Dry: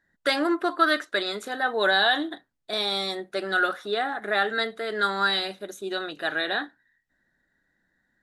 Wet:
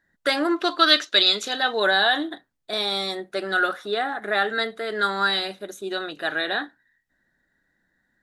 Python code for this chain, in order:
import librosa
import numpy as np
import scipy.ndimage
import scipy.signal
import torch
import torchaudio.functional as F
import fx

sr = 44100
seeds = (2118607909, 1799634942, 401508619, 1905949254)

y = fx.band_shelf(x, sr, hz=4100.0, db=12.5, octaves=1.7, at=(0.56, 1.8))
y = y * 10.0 ** (1.5 / 20.0)